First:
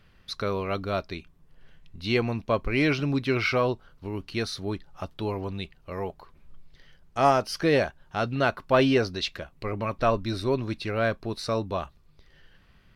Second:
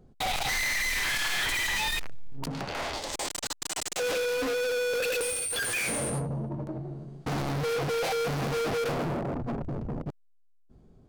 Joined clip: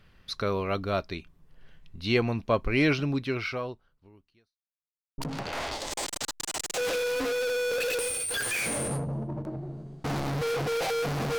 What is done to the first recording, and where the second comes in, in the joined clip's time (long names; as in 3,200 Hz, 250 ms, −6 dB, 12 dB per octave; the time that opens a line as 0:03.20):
first
0:02.91–0:04.59: fade out quadratic
0:04.59–0:05.18: silence
0:05.18: continue with second from 0:02.40